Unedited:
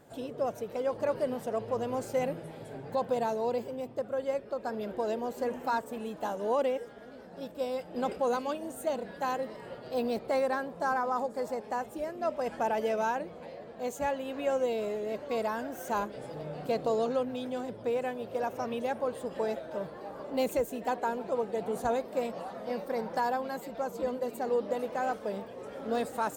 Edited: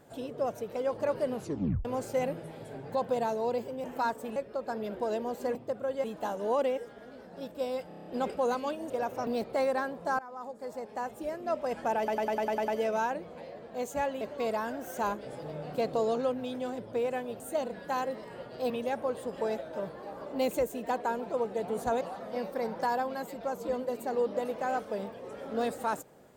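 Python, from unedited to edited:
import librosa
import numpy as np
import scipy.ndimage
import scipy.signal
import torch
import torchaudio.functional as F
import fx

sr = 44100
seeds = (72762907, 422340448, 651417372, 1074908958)

y = fx.edit(x, sr, fx.tape_stop(start_s=1.33, length_s=0.52),
    fx.swap(start_s=3.84, length_s=0.49, other_s=5.52, other_length_s=0.52),
    fx.stutter(start_s=7.88, slice_s=0.03, count=7),
    fx.swap(start_s=8.72, length_s=1.3, other_s=18.31, other_length_s=0.37),
    fx.fade_in_from(start_s=10.94, length_s=1.09, floor_db=-18.5),
    fx.stutter(start_s=12.73, slice_s=0.1, count=8),
    fx.cut(start_s=14.26, length_s=0.86),
    fx.cut(start_s=21.99, length_s=0.36), tone=tone)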